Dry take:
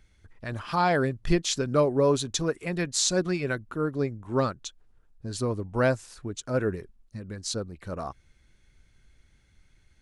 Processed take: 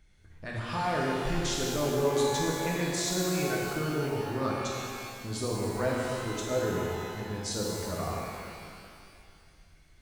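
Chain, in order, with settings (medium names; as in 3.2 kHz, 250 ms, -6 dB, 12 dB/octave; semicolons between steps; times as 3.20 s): peak limiter -22 dBFS, peak gain reduction 11 dB; pitch-shifted reverb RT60 2.3 s, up +12 st, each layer -8 dB, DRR -4 dB; trim -4 dB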